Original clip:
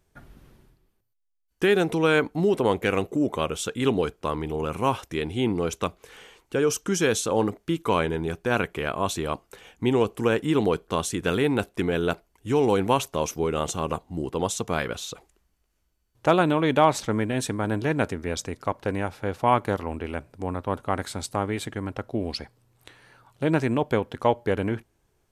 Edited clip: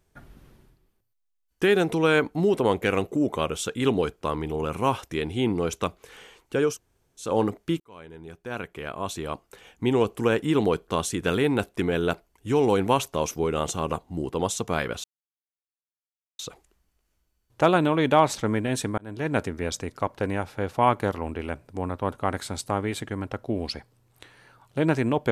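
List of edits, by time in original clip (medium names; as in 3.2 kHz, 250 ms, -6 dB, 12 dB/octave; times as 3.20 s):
6.72–7.25 s: room tone, crossfade 0.16 s
7.80–10.04 s: fade in
15.04 s: insert silence 1.35 s
17.63–18.03 s: fade in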